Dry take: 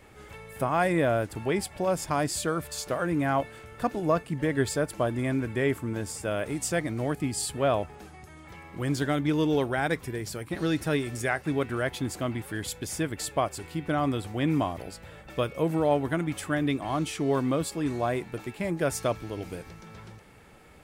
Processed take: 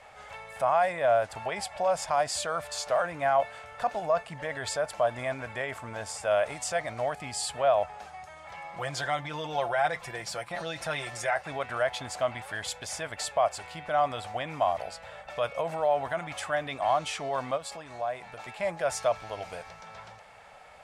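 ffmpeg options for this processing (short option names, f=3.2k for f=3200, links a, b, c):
-filter_complex "[0:a]asettb=1/sr,asplit=3[a][b][c];[a]atrim=end=8.574[d];[b]atrim=start=8.57:end=11.35,asetpts=PTS-STARTPTS,afade=t=in:d=0.004:c=qsin,afade=t=out:st=2.776:d=0.004:c=qsin,aecho=1:1:5.8:0.65,atrim=end_sample=122598[e];[c]atrim=start=11.346[f];[d][e]acrossfade=d=0.004:c1=hsin:c2=qsin[g];[g][f]acrossfade=d=0.004:c1=qsin:c2=hsin,asplit=3[h][i][j];[h]afade=t=out:st=17.56:d=0.02[k];[i]acompressor=threshold=-33dB:ratio=10:attack=3.2:release=140:knee=1:detection=peak,afade=t=in:st=17.56:d=0.02,afade=t=out:st=18.47:d=0.02[l];[j]afade=t=in:st=18.47:d=0.02[m];[k][l][m]amix=inputs=3:normalize=0,alimiter=limit=-22dB:level=0:latency=1:release=19,lowpass=7.4k,lowshelf=f=470:t=q:w=3:g=-11.5,volume=2.5dB"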